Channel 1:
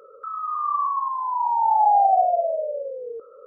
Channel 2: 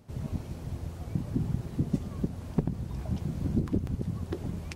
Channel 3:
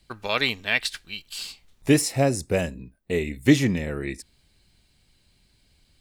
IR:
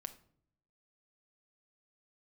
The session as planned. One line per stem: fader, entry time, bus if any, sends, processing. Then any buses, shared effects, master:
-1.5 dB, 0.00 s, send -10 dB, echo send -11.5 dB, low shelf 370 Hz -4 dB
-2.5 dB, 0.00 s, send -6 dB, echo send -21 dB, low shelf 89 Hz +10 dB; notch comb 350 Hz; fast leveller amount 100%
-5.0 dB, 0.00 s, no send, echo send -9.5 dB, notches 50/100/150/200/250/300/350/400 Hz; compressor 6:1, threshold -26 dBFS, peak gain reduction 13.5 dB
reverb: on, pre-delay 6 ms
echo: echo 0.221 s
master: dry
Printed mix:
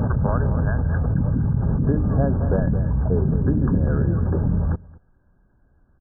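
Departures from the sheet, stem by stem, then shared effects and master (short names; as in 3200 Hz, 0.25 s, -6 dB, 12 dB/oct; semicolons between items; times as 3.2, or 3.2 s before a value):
stem 1: muted; stem 3 -5.0 dB -> +5.0 dB; master: extra brick-wall FIR low-pass 1700 Hz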